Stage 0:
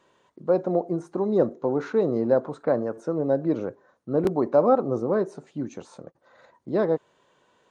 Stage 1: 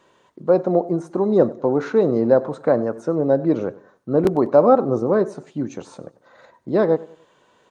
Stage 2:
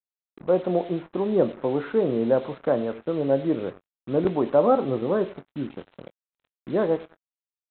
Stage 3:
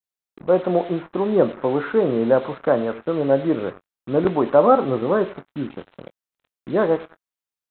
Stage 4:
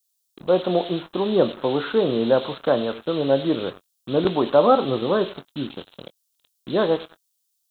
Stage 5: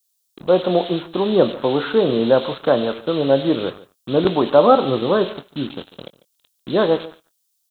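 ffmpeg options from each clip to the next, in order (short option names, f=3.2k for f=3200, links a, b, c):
-af "aecho=1:1:96|192|288:0.1|0.036|0.013,volume=5.5dB"
-filter_complex "[0:a]aresample=8000,acrusher=bits=5:mix=0:aa=0.5,aresample=44100,asplit=2[a][b];[b]adelay=22,volume=-14dB[c];[a][c]amix=inputs=2:normalize=0,volume=-5.5dB"
-af "adynamicequalizer=threshold=0.0112:dfrequency=1300:dqfactor=1:tfrequency=1300:tqfactor=1:attack=5:release=100:ratio=0.375:range=3:mode=boostabove:tftype=bell,volume=3dB"
-af "aexciter=amount=6.4:drive=6.5:freq=3.1k,volume=-1.5dB"
-filter_complex "[0:a]asplit=2[a][b];[b]adelay=145.8,volume=-19dB,highshelf=f=4k:g=-3.28[c];[a][c]amix=inputs=2:normalize=0,volume=3.5dB"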